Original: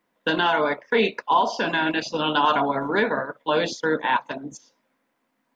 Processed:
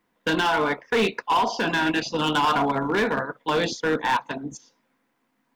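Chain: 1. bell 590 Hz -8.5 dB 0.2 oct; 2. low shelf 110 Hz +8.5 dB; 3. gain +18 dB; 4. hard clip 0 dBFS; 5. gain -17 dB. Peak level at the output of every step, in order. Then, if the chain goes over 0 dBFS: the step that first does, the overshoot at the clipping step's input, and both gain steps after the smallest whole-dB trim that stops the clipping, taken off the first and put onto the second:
-9.5, -8.5, +9.5, 0.0, -17.0 dBFS; step 3, 9.5 dB; step 3 +8 dB, step 5 -7 dB

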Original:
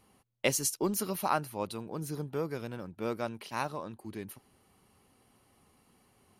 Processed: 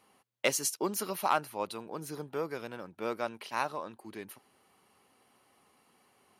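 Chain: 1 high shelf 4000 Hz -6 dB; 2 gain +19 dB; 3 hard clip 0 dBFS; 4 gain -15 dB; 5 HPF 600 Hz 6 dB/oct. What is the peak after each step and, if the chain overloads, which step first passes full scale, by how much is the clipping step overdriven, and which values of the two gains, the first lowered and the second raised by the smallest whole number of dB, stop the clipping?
-13.5, +5.5, 0.0, -15.0, -12.0 dBFS; step 2, 5.5 dB; step 2 +13 dB, step 4 -9 dB

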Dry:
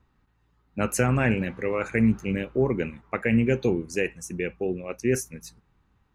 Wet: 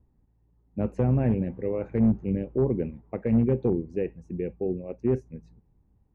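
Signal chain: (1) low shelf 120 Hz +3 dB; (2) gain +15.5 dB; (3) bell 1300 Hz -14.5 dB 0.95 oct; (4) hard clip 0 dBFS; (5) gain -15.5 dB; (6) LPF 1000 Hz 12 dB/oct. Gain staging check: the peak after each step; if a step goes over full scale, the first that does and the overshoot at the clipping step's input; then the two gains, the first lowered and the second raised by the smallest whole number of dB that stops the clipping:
-9.0, +6.5, +5.5, 0.0, -15.5, -15.0 dBFS; step 2, 5.5 dB; step 2 +9.5 dB, step 5 -9.5 dB

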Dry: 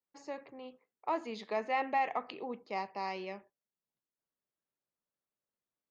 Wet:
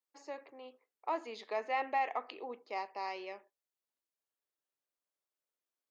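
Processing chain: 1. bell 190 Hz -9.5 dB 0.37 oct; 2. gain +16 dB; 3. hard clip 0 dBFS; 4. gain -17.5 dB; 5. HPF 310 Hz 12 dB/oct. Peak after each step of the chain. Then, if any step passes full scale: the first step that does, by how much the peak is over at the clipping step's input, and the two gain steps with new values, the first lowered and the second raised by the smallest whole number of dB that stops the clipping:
-21.0, -5.0, -5.0, -22.5, -21.5 dBFS; no overload

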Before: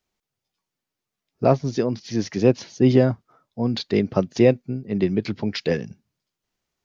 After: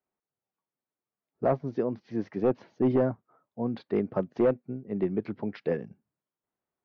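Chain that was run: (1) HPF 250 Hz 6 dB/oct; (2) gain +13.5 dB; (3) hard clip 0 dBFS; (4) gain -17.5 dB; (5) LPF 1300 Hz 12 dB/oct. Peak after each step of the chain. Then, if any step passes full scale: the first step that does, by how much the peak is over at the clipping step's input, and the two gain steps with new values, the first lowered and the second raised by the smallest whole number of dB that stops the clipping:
-5.5, +8.0, 0.0, -17.5, -17.0 dBFS; step 2, 8.0 dB; step 2 +5.5 dB, step 4 -9.5 dB

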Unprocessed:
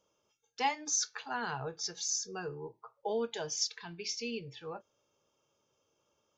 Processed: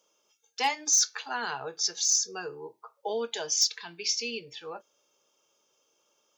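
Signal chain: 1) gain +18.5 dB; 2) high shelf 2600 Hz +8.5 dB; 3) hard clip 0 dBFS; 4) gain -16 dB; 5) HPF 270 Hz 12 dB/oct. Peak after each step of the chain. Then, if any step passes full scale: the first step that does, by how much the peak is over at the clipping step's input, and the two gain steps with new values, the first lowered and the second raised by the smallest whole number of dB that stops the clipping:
+0.5, +7.5, 0.0, -16.0, -14.0 dBFS; step 1, 7.5 dB; step 1 +10.5 dB, step 4 -8 dB

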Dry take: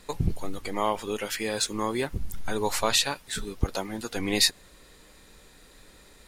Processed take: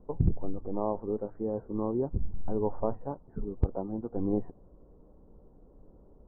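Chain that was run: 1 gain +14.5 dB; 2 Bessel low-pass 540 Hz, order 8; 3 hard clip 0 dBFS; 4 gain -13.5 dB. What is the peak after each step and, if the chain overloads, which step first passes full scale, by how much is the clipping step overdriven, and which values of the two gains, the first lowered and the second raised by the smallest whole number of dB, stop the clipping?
+7.0, +4.5, 0.0, -13.5 dBFS; step 1, 4.5 dB; step 1 +9.5 dB, step 4 -8.5 dB

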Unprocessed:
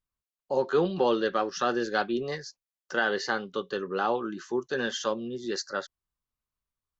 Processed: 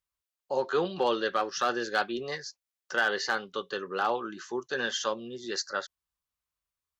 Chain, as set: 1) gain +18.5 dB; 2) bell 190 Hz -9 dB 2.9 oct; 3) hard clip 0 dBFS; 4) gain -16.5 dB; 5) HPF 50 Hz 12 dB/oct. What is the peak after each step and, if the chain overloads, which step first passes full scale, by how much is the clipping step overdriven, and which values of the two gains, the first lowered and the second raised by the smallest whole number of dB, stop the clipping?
+6.0, +4.5, 0.0, -16.5, -16.0 dBFS; step 1, 4.5 dB; step 1 +13.5 dB, step 4 -11.5 dB

